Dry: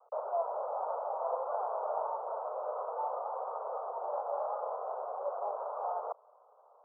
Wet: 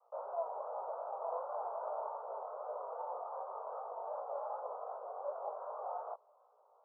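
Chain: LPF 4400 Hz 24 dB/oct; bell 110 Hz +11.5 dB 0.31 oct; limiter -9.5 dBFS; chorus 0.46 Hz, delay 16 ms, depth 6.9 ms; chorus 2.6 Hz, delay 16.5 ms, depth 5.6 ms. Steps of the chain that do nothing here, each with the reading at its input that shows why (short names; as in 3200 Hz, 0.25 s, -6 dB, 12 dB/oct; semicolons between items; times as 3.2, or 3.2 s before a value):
LPF 4400 Hz: input band ends at 1500 Hz; bell 110 Hz: input band starts at 360 Hz; limiter -9.5 dBFS: input peak -21.5 dBFS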